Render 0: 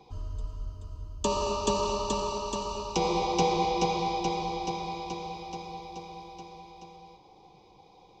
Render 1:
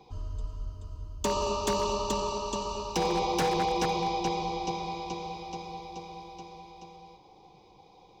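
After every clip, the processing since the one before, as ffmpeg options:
ffmpeg -i in.wav -af "aeval=exprs='0.0944*(abs(mod(val(0)/0.0944+3,4)-2)-1)':channel_layout=same" out.wav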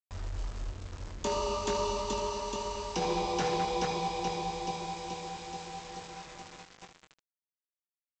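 ffmpeg -i in.wav -af "aresample=16000,acrusher=bits=6:mix=0:aa=0.000001,aresample=44100,aecho=1:1:22|77:0.473|0.316,volume=-4.5dB" out.wav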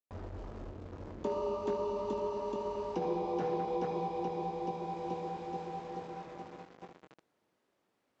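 ffmpeg -i in.wav -af "alimiter=level_in=4dB:limit=-24dB:level=0:latency=1:release=470,volume=-4dB,areverse,acompressor=mode=upward:threshold=-47dB:ratio=2.5,areverse,bandpass=frequency=350:width_type=q:width=0.79:csg=0,volume=6dB" out.wav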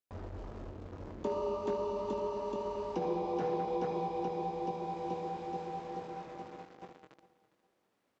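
ffmpeg -i in.wav -af "aecho=1:1:408|816|1224:0.126|0.039|0.0121" out.wav

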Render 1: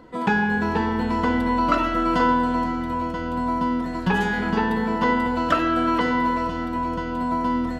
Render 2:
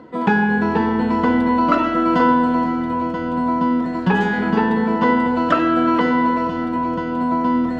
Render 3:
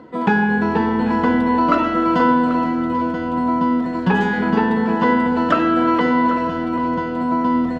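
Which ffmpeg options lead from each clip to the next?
ffmpeg -i in.wav -af "highpass=220,aemphasis=mode=reproduction:type=bsi,areverse,acompressor=mode=upward:threshold=-27dB:ratio=2.5,areverse,volume=3.5dB" out.wav
ffmpeg -i in.wav -af "aecho=1:1:788:0.2" out.wav

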